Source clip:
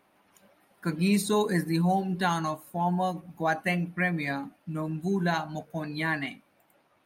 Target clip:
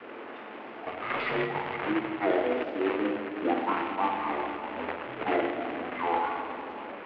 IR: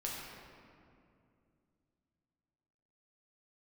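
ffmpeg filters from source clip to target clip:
-filter_complex "[0:a]aeval=exprs='val(0)+0.5*0.02*sgn(val(0))':c=same,asetrate=23361,aresample=44100,atempo=1.88775,adynamicequalizer=threshold=0.00794:dfrequency=690:dqfactor=4.8:tfrequency=690:tqfactor=4.8:attack=5:release=100:ratio=0.375:range=3.5:mode=boostabove:tftype=bell,acontrast=74,asplit=2[s0][s1];[1:a]atrim=start_sample=2205,lowshelf=f=100:g=11,adelay=54[s2];[s1][s2]afir=irnorm=-1:irlink=0,volume=0.708[s3];[s0][s3]amix=inputs=2:normalize=0,acrusher=bits=2:mode=log:mix=0:aa=0.000001,highpass=f=380:t=q:w=0.5412,highpass=f=380:t=q:w=1.307,lowpass=f=2900:t=q:w=0.5176,lowpass=f=2900:t=q:w=0.7071,lowpass=f=2900:t=q:w=1.932,afreqshift=-81,volume=0.398"

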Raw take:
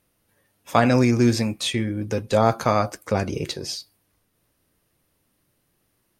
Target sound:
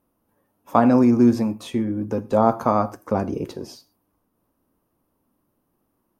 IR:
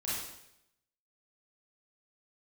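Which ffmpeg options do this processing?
-filter_complex "[0:a]equalizer=f=125:t=o:w=1:g=-4,equalizer=f=250:t=o:w=1:g=8,equalizer=f=1000:t=o:w=1:g=8,equalizer=f=2000:t=o:w=1:g=-9,equalizer=f=4000:t=o:w=1:g=-9,equalizer=f=8000:t=o:w=1:g=-9,asplit=2[s0][s1];[1:a]atrim=start_sample=2205,afade=t=out:st=0.18:d=0.01,atrim=end_sample=8379[s2];[s1][s2]afir=irnorm=-1:irlink=0,volume=0.0944[s3];[s0][s3]amix=inputs=2:normalize=0,volume=0.708"

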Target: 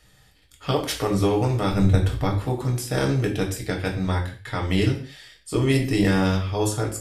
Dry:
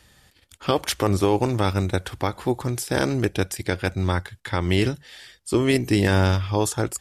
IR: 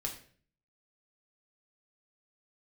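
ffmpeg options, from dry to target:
-filter_complex "[0:a]asettb=1/sr,asplit=3[s0][s1][s2];[s0]atrim=end=1.714[s3];[s1]atrim=start=1.71:end=2.43,asetpts=PTS-STARTPTS,afade=t=in:d=0.004:c=qsin,afade=t=out:st=0.716:d=0.004:c=qsin,lowshelf=f=170:g=11.5[s4];[s2]atrim=start=2.426[s5];[s3][s4]acrossfade=d=0.004:c1=hsin:c2=qsin[s6];[s6][s5]acrossfade=d=0.004:c1=qsin:c2=hsin[s7];[1:a]atrim=start_sample=2205,afade=t=out:st=0.27:d=0.01,atrim=end_sample=12348[s8];[s7][s8]afir=irnorm=-1:irlink=0,volume=0.75"

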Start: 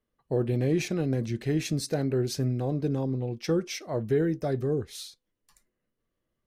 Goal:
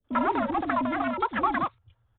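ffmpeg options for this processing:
-filter_complex "[0:a]asubboost=boost=2.5:cutoff=72,asplit=2[s0][s1];[s1]aeval=exprs='0.0224*(abs(mod(val(0)/0.0224+3,4)-2)-1)':c=same,volume=0.501[s2];[s0][s2]amix=inputs=2:normalize=0,acrossover=split=180|1400[s3][s4][s5];[s5]adelay=70[s6];[s4]adelay=130[s7];[s3][s7][s6]amix=inputs=3:normalize=0,afreqshift=-40,asetrate=130536,aresample=44100,aresample=8000,aresample=44100,volume=1.41"

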